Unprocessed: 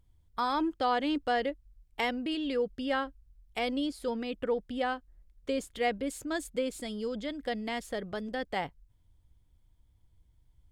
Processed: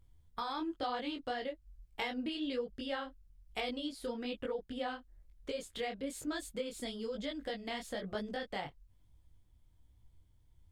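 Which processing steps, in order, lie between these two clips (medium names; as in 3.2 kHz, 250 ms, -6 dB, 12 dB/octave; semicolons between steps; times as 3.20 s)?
dynamic bell 3.8 kHz, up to +6 dB, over -52 dBFS, Q 1.9; compression 4:1, threshold -36 dBFS, peak gain reduction 11 dB; detune thickener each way 38 cents; trim +3.5 dB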